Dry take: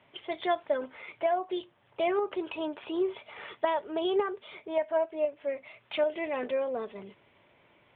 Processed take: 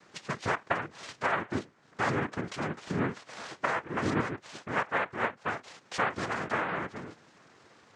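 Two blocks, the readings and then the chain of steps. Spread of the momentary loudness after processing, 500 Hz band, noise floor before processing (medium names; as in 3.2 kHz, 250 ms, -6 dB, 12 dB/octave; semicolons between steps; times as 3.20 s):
10 LU, -7.5 dB, -65 dBFS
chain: compression 1.5:1, threshold -47 dBFS, peak gain reduction 9 dB; noise-vocoded speech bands 3; distance through air 95 m; trim +6.5 dB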